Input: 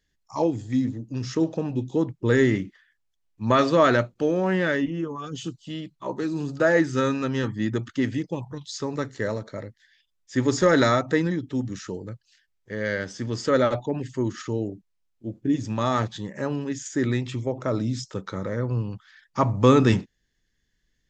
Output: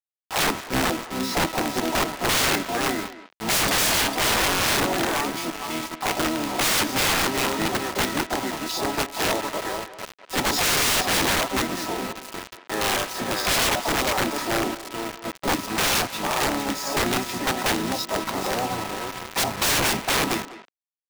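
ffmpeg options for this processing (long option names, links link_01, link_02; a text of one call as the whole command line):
ffmpeg -i in.wav -filter_complex "[0:a]asplit=2[link_01][link_02];[link_02]aecho=0:1:452:0.398[link_03];[link_01][link_03]amix=inputs=2:normalize=0,aeval=exprs='val(0)+0.00794*sin(2*PI*1300*n/s)':channel_layout=same,asplit=4[link_04][link_05][link_06][link_07];[link_05]asetrate=33038,aresample=44100,atempo=1.33484,volume=-2dB[link_08];[link_06]asetrate=66075,aresample=44100,atempo=0.66742,volume=-11dB[link_09];[link_07]asetrate=88200,aresample=44100,atempo=0.5,volume=-13dB[link_10];[link_04][link_08][link_09][link_10]amix=inputs=4:normalize=0,highpass=370,equalizer=frequency=480:width_type=q:width=4:gain=-8,equalizer=frequency=750:width_type=q:width=4:gain=7,equalizer=frequency=1400:width_type=q:width=4:gain=-5,equalizer=frequency=3000:width_type=q:width=4:gain=-7,lowpass=frequency=6100:width=0.5412,lowpass=frequency=6100:width=1.3066,acrusher=bits=5:mix=0:aa=0.000001,aeval=exprs='(mod(11.9*val(0)+1,2)-1)/11.9':channel_layout=same,asplit=2[link_11][link_12];[link_12]adelay=200,highpass=300,lowpass=3400,asoftclip=type=hard:threshold=-31.5dB,volume=-11dB[link_13];[link_11][link_13]amix=inputs=2:normalize=0,volume=5.5dB" out.wav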